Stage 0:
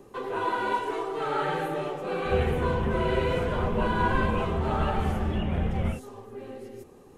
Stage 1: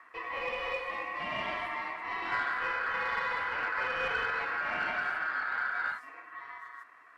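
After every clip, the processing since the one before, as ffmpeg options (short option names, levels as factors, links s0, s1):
-filter_complex "[0:a]aeval=exprs='val(0)*sin(2*PI*1500*n/s)':c=same,acrusher=bits=9:mode=log:mix=0:aa=0.000001,asplit=2[s0][s1];[s1]highpass=f=720:p=1,volume=4.47,asoftclip=type=tanh:threshold=0.251[s2];[s0][s2]amix=inputs=2:normalize=0,lowpass=f=1300:p=1,volume=0.501,volume=0.501"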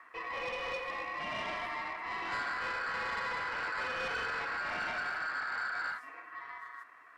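-af "asoftclip=type=tanh:threshold=0.0282"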